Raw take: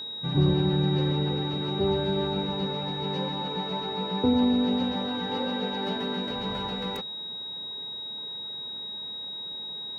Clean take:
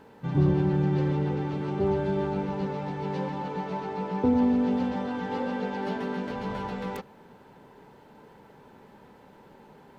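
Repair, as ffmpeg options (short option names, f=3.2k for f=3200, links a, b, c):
-af "bandreject=f=3.8k:w=30"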